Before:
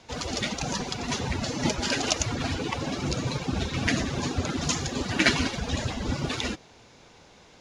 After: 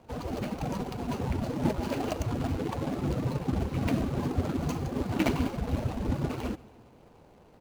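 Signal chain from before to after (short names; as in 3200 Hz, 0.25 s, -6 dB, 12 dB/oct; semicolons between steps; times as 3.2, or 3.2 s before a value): median filter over 25 samples; feedback echo 0.14 s, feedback 57%, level -22.5 dB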